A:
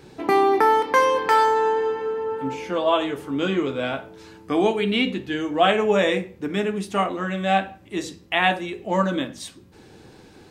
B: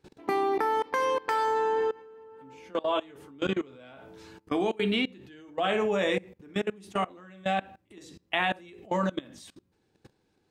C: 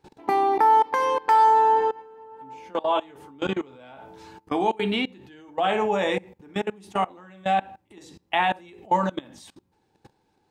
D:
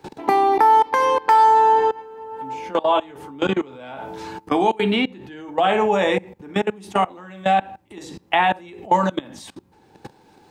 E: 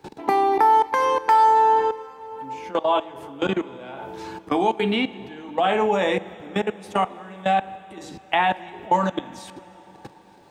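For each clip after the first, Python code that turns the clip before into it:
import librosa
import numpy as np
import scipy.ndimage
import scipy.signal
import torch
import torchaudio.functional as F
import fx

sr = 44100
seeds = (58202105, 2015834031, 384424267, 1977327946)

y1 = fx.level_steps(x, sr, step_db=23)
y1 = y1 * 10.0 ** (-3.0 / 20.0)
y2 = fx.peak_eq(y1, sr, hz=860.0, db=11.5, octaves=0.35)
y2 = y2 * 10.0 ** (1.5 / 20.0)
y3 = fx.band_squash(y2, sr, depth_pct=40)
y3 = y3 * 10.0 ** (5.0 / 20.0)
y4 = fx.rev_plate(y3, sr, seeds[0], rt60_s=4.6, hf_ratio=0.95, predelay_ms=0, drr_db=16.5)
y4 = y4 * 10.0 ** (-2.5 / 20.0)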